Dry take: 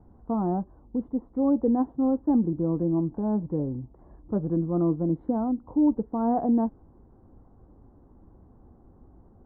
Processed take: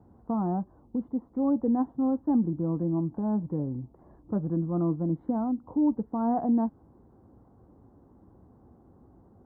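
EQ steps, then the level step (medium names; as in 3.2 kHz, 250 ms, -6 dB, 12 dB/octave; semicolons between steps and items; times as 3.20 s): high-pass 81 Hz 12 dB/octave; dynamic bell 440 Hz, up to -6 dB, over -37 dBFS, Q 1.3; 0.0 dB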